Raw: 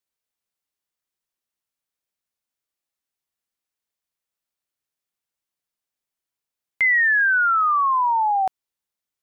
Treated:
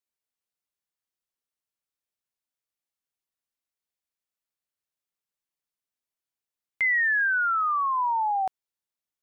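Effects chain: 7.27–7.98 HPF 470 Hz 6 dB/oct; gain -5.5 dB

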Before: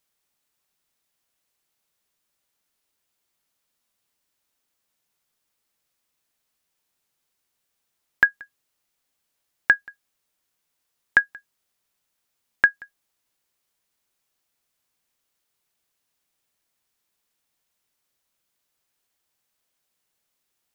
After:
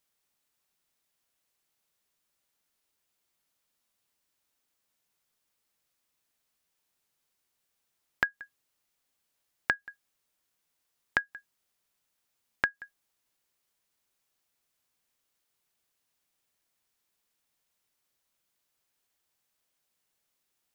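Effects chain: compressor 12:1, threshold -21 dBFS, peak gain reduction 11 dB; gain -2.5 dB

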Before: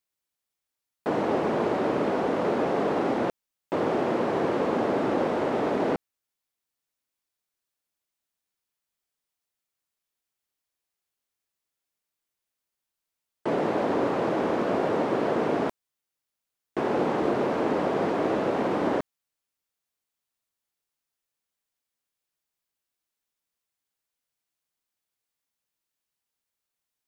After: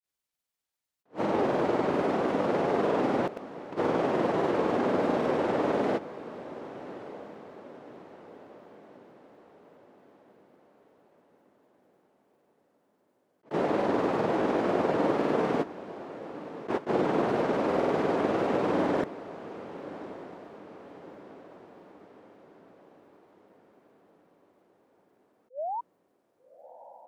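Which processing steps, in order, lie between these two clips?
grains, pitch spread up and down by 0 st; painted sound rise, 25.5–25.81, 480–990 Hz -32 dBFS; on a send: diffused feedback echo 1.212 s, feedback 49%, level -15 dB; on the sum: attack slew limiter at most 350 dB/s

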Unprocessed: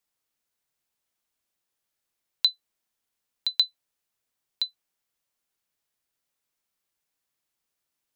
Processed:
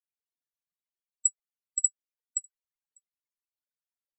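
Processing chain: outdoor echo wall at 200 m, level -18 dB; loudest bins only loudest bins 8; wide varispeed 1.95×

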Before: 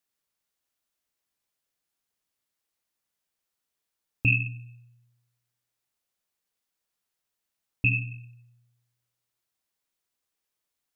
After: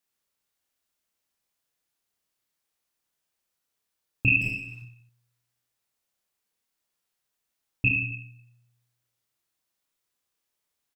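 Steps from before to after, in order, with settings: 4.41–4.82 overdrive pedal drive 28 dB, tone 1900 Hz, clips at -21 dBFS; reverse bouncing-ball echo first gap 30 ms, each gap 1.3×, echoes 5

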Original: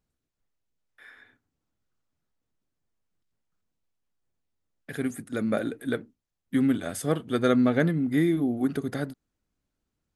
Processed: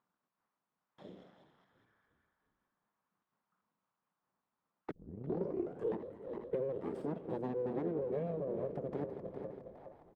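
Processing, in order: regenerating reverse delay 0.206 s, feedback 53%, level -12.5 dB; compressor 6:1, threshold -38 dBFS, peak gain reduction 19.5 dB; 6.75–7.23 ripple EQ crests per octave 1.3, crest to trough 12 dB; full-wave rectifier; 4.91 tape start 1.09 s; auto-wah 410–1100 Hz, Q 2.7, down, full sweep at -46 dBFS; bell 190 Hz +13.5 dB 0.98 oct; frequency-shifting echo 0.353 s, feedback 52%, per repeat -37 Hz, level -18 dB; gain +11.5 dB

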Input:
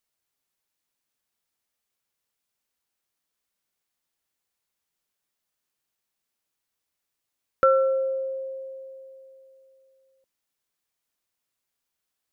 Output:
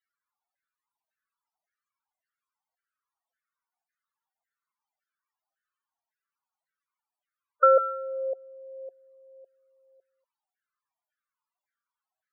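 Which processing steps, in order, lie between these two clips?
LFO high-pass saw down 1.8 Hz 630–1600 Hz; loudest bins only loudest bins 16

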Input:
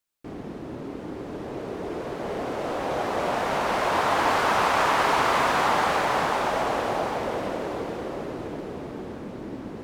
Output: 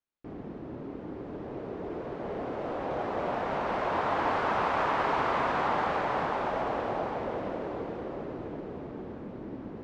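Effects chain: tape spacing loss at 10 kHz 25 dB; gain -3.5 dB

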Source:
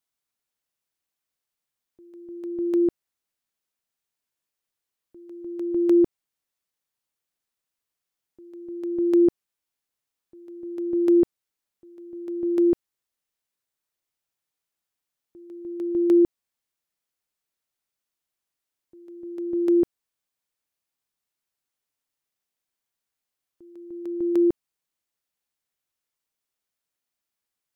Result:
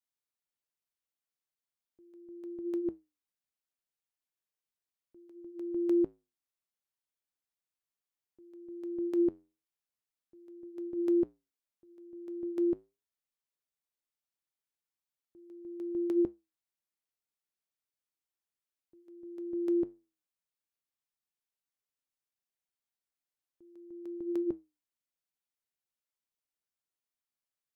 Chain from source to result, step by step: flange 0.37 Hz, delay 6.9 ms, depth 4.4 ms, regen -80%; gain -5.5 dB

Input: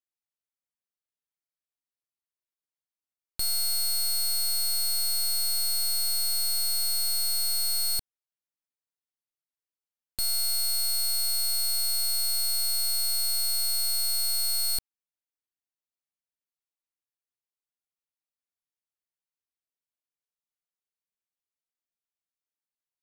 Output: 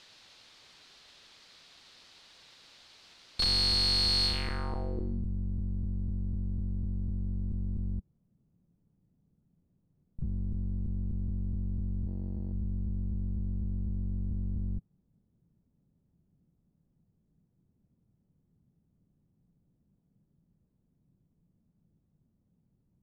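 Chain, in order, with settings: cycle switcher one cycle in 3, inverted; power-law curve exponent 0.35; low-pass sweep 4200 Hz -> 170 Hz, 4.25–5.25; 12.07–12.53 power-law curve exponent 2; gain -3 dB

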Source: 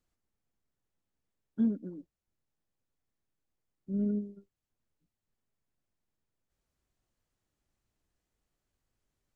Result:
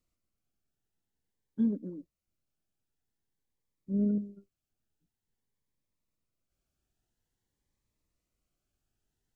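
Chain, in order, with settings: 1.72–4.18 dynamic EQ 430 Hz, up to +6 dB, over -45 dBFS, Q 0.74; cascading phaser rising 0.49 Hz

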